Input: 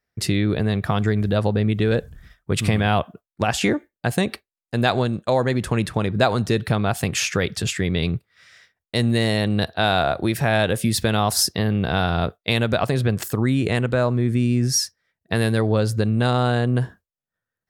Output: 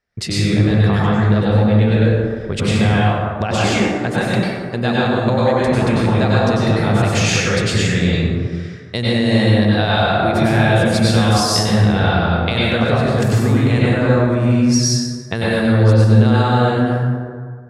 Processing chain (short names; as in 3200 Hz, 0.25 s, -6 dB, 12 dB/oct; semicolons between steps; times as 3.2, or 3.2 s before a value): LPF 6900 Hz 12 dB/oct; compressor, threshold -21 dBFS, peak gain reduction 8.5 dB; plate-style reverb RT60 1.8 s, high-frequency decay 0.45×, pre-delay 85 ms, DRR -7 dB; gain +2.5 dB